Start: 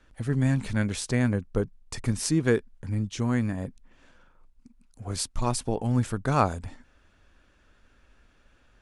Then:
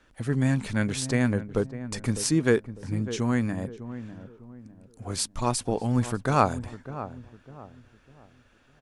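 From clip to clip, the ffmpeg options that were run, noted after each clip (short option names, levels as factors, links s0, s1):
-filter_complex "[0:a]lowshelf=f=82:g=-10,asplit=2[s0][s1];[s1]adelay=602,lowpass=f=1000:p=1,volume=0.251,asplit=2[s2][s3];[s3]adelay=602,lowpass=f=1000:p=1,volume=0.38,asplit=2[s4][s5];[s5]adelay=602,lowpass=f=1000:p=1,volume=0.38,asplit=2[s6][s7];[s7]adelay=602,lowpass=f=1000:p=1,volume=0.38[s8];[s0][s2][s4][s6][s8]amix=inputs=5:normalize=0,volume=1.26"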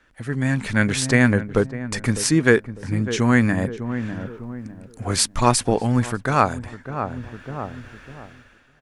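-af "equalizer=f=1800:w=1.4:g=6.5,dynaudnorm=f=180:g=7:m=5.96,volume=0.891"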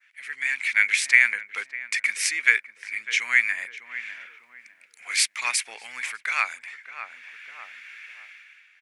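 -af "adynamicequalizer=threshold=0.0178:dfrequency=3200:dqfactor=0.84:tfrequency=3200:tqfactor=0.84:attack=5:release=100:ratio=0.375:range=2:mode=cutabove:tftype=bell,highpass=f=2200:t=q:w=7.3,volume=0.708"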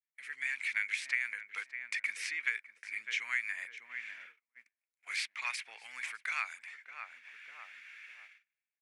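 -filter_complex "[0:a]agate=range=0.0224:threshold=0.00562:ratio=16:detection=peak,acrossover=split=730|4100[s0][s1][s2];[s0]acompressor=threshold=0.00126:ratio=4[s3];[s1]acompressor=threshold=0.0794:ratio=4[s4];[s2]acompressor=threshold=0.00794:ratio=4[s5];[s3][s4][s5]amix=inputs=3:normalize=0,volume=0.376"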